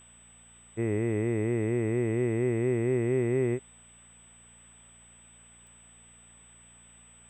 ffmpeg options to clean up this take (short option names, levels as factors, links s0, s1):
-af "adeclick=t=4,bandreject=f=58.2:t=h:w=4,bandreject=f=116.4:t=h:w=4,bandreject=f=174.6:t=h:w=4,bandreject=f=232.8:t=h:w=4,bandreject=f=8000:w=30,afftdn=nr=20:nf=-55"